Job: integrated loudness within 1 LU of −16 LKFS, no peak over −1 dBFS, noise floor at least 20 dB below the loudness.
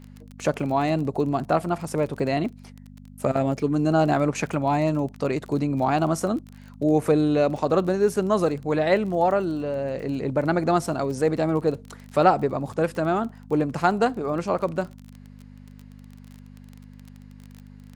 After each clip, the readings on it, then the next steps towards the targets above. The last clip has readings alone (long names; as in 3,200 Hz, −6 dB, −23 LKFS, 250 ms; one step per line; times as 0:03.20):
crackle rate 25 per second; mains hum 50 Hz; hum harmonics up to 250 Hz; level of the hum −43 dBFS; integrated loudness −24.0 LKFS; sample peak −4.5 dBFS; target loudness −16.0 LKFS
→ click removal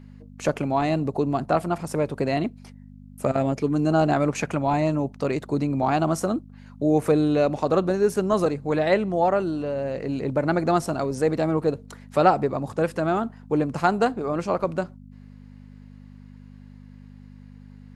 crackle rate 0 per second; mains hum 50 Hz; hum harmonics up to 250 Hz; level of the hum −43 dBFS
→ hum removal 50 Hz, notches 5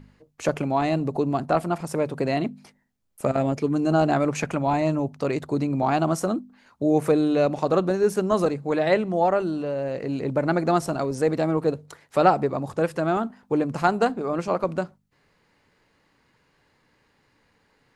mains hum none found; integrated loudness −24.0 LKFS; sample peak −4.5 dBFS; target loudness −16.0 LKFS
→ level +8 dB
brickwall limiter −1 dBFS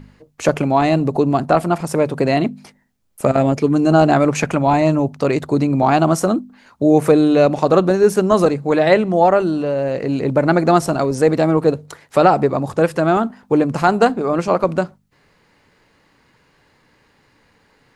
integrated loudness −16.5 LKFS; sample peak −1.0 dBFS; background noise floor −58 dBFS